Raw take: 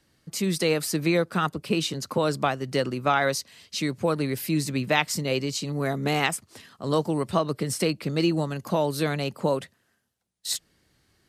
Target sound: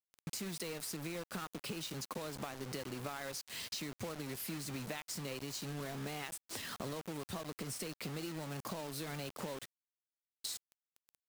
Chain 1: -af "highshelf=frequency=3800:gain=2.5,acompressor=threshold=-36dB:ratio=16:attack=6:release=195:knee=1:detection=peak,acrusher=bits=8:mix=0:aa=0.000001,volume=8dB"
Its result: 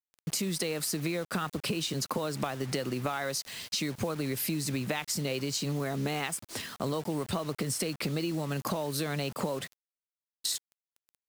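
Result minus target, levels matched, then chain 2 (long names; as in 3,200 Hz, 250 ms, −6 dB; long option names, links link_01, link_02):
downward compressor: peak gain reduction −11 dB
-af "highshelf=frequency=3800:gain=2.5,acompressor=threshold=-47.5dB:ratio=16:attack=6:release=195:knee=1:detection=peak,acrusher=bits=8:mix=0:aa=0.000001,volume=8dB"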